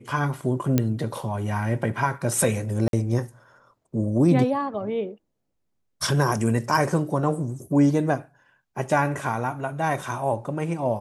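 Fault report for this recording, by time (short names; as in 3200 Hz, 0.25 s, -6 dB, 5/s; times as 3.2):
0.78 pop -7 dBFS
2.88–2.93 gap 52 ms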